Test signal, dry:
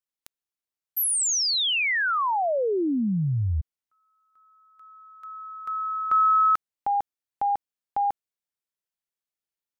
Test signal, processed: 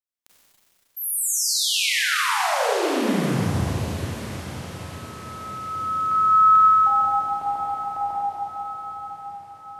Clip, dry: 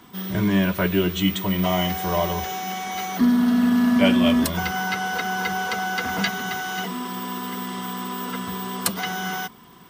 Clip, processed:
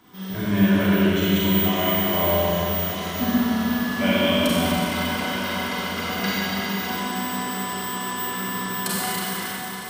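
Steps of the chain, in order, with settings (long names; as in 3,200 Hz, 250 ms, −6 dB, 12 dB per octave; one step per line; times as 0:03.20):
feedback delay with all-pass diffusion 1,114 ms, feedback 54%, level −14 dB
four-comb reverb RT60 3.6 s, combs from 31 ms, DRR −9 dB
level −7.5 dB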